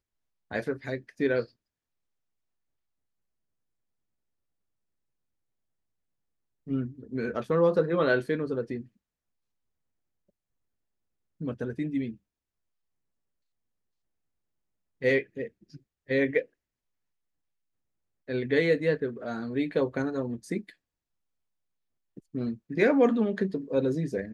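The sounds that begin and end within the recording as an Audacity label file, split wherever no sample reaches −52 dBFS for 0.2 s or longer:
0.510000	1.480000	sound
6.670000	8.870000	sound
11.400000	12.160000	sound
15.010000	15.770000	sound
16.080000	16.460000	sound
18.280000	20.730000	sound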